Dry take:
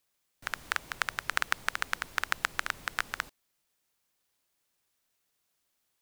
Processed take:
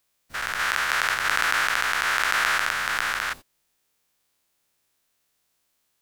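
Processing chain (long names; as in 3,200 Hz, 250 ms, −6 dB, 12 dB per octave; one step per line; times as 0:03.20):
every bin's largest magnitude spread in time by 240 ms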